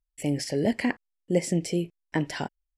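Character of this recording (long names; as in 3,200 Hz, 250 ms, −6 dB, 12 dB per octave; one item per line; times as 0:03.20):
background noise floor −84 dBFS
spectral slope −5.5 dB per octave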